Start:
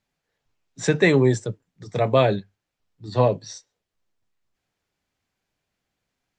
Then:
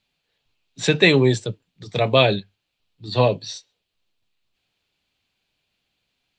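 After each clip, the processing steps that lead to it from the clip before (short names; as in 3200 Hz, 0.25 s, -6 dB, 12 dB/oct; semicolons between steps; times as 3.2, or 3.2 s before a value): band shelf 3300 Hz +10.5 dB 1.1 oct; gain +1 dB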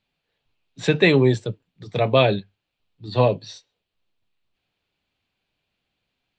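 high shelf 4100 Hz -12 dB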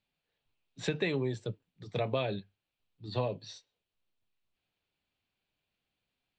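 compressor 6:1, threshold -20 dBFS, peak gain reduction 9 dB; gain -8 dB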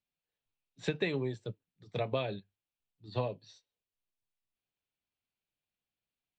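upward expander 1.5:1, over -47 dBFS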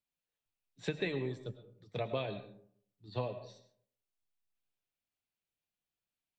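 digital reverb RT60 0.62 s, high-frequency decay 0.45×, pre-delay 65 ms, DRR 10.5 dB; gain -3 dB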